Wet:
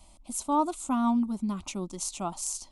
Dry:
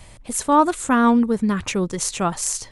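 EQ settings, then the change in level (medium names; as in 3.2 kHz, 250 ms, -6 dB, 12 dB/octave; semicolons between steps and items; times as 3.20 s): static phaser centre 460 Hz, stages 6; -8.5 dB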